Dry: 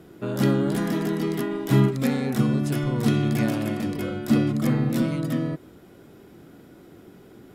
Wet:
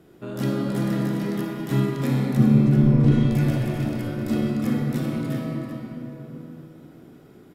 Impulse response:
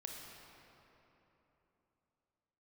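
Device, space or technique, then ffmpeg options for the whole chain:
cave: -filter_complex "[0:a]asettb=1/sr,asplit=3[s0][s1][s2];[s0]atrim=end=2.374[s3];[s1]atrim=start=2.37:end=3.12,asetpts=PTS-STARTPTS,afade=t=in:d=0.004:c=qsin,afade=t=out:st=0.746:d=0.004:c=qsin,aemphasis=mode=reproduction:type=riaa[s4];[s2]atrim=start=3.116[s5];[s3][s4]acrossfade=d=0.004:c1=hsin:c2=qsin[s6];[s6][s5]acrossfade=d=0.004:c1=qsin:c2=hsin,aecho=1:1:388:0.335[s7];[1:a]atrim=start_sample=2205[s8];[s7][s8]afir=irnorm=-1:irlink=0"

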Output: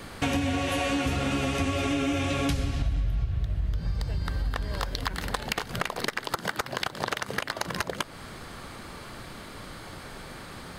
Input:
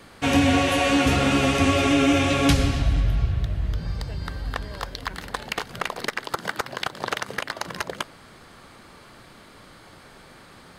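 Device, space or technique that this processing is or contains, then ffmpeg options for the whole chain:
ASMR close-microphone chain: -af "lowshelf=f=110:g=6,acompressor=threshold=0.0282:ratio=5,highshelf=f=11000:g=4,volume=1.78"

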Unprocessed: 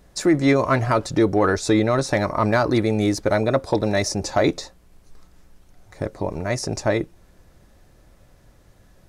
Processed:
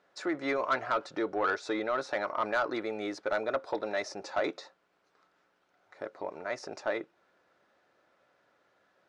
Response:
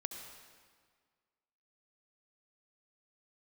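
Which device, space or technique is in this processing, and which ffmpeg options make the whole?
intercom: -af "highpass=460,lowpass=3500,equalizer=f=1400:t=o:w=0.26:g=7.5,asoftclip=type=tanh:threshold=0.251,volume=0.398"

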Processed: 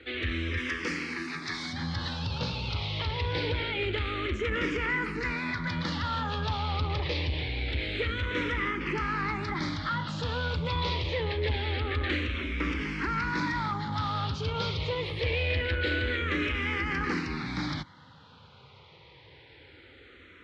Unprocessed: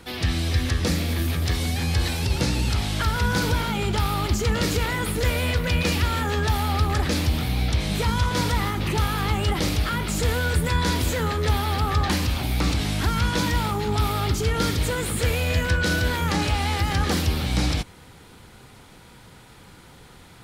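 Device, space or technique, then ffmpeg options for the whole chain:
barber-pole phaser into a guitar amplifier: -filter_complex "[0:a]asettb=1/sr,asplit=3[s0][s1][s2];[s0]atrim=end=0.574[s3];[s1]atrim=start=0.57:end=1.73,asetpts=PTS-STARTPTS,afade=t=in:d=0.004:c=qsin,afade=t=out:st=1.156:d=0.004:c=qsin,aemphasis=mode=production:type=bsi[s4];[s2]atrim=start=1.726[s5];[s3][s4]acrossfade=d=0.004:c1=hsin:c2=qsin[s6];[s6][s5]acrossfade=d=0.004:c1=qsin:c2=hsin,asplit=2[s7][s8];[s8]afreqshift=-0.25[s9];[s7][s9]amix=inputs=2:normalize=1,asoftclip=type=tanh:threshold=0.126,highpass=89,equalizer=f=120:t=q:w=4:g=-6,equalizer=f=200:t=q:w=4:g=-9,equalizer=f=710:t=q:w=4:g=-10,equalizer=f=2100:t=q:w=4:g=4,lowpass=f=4100:w=0.5412,lowpass=f=4100:w=1.3066"

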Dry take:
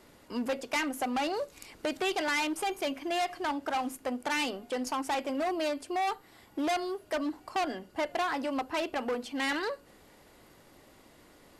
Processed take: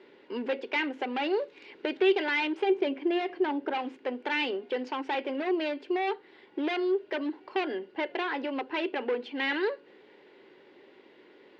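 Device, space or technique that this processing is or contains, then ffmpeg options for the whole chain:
phone earpiece: -filter_complex "[0:a]asettb=1/sr,asplit=3[s0][s1][s2];[s0]atrim=end=2.654[s3];[s1]atrim=start=2.65:end=3.75,asetpts=PTS-STARTPTS,afade=t=in:d=0.004:c=qsin,afade=t=out:st=1.096:d=0.004:c=qsin,tiltshelf=f=870:g=5[s4];[s2]atrim=start=3.746[s5];[s3][s4]acrossfade=d=0.004:c1=hsin:c2=qsin[s6];[s6][s5]acrossfade=d=0.004:c1=qsin:c2=hsin,highpass=340,equalizer=f=390:t=q:w=4:g=10,equalizer=f=680:t=q:w=4:g=-10,equalizer=f=1200:t=q:w=4:g=-10,lowpass=f=3400:w=0.5412,lowpass=f=3400:w=1.3066,volume=1.5"

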